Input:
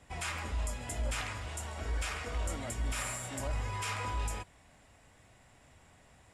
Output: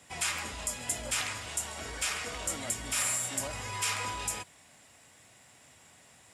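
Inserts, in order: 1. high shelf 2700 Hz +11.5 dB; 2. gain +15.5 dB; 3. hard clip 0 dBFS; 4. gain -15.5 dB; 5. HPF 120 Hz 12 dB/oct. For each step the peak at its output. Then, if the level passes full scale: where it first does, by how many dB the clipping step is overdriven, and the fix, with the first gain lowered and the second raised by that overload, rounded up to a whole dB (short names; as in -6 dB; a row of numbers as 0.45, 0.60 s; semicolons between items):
-17.5, -2.0, -2.0, -17.5, -17.5 dBFS; no overload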